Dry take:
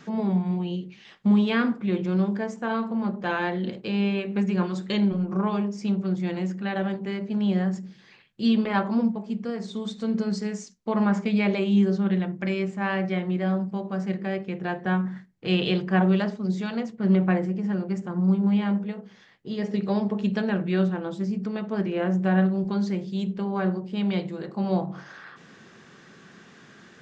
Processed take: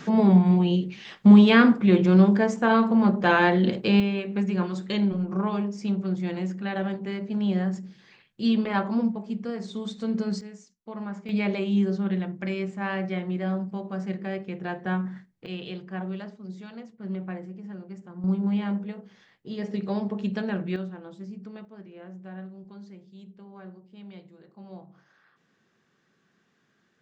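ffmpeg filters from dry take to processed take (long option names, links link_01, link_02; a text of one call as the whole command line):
ffmpeg -i in.wav -af "asetnsamples=nb_out_samples=441:pad=0,asendcmd='4 volume volume -1.5dB;10.41 volume volume -12.5dB;11.29 volume volume -3dB;15.46 volume volume -12.5dB;18.24 volume volume -3.5dB;20.76 volume volume -11.5dB;21.65 volume volume -19dB',volume=7dB" out.wav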